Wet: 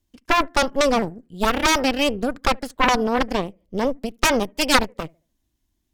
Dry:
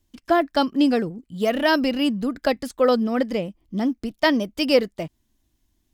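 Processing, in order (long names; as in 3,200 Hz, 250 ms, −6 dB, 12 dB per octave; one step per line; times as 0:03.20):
bucket-brigade delay 73 ms, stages 1,024, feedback 30%, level −23 dB
harmonic generator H 3 −6 dB, 6 −10 dB, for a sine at −5.5 dBFS
level +2 dB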